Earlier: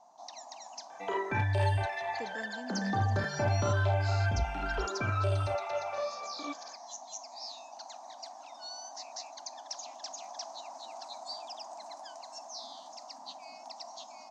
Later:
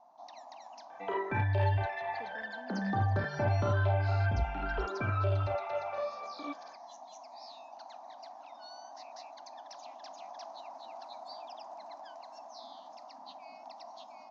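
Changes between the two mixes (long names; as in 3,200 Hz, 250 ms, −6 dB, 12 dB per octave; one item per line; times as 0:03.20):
speech −8.0 dB
master: add high-frequency loss of the air 240 metres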